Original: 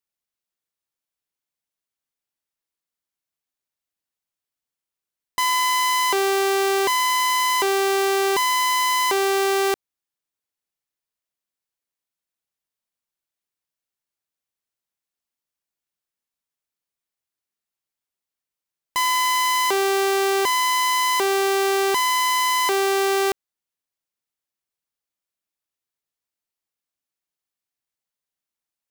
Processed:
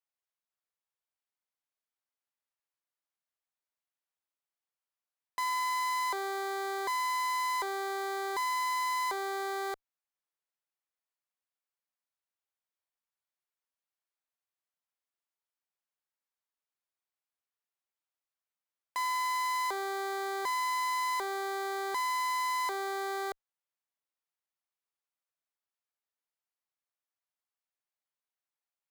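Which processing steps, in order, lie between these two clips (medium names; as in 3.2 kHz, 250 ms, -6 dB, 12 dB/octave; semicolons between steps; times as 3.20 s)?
high-pass 650 Hz 12 dB/octave; treble shelf 2.4 kHz -11.5 dB; valve stage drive 30 dB, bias 0.25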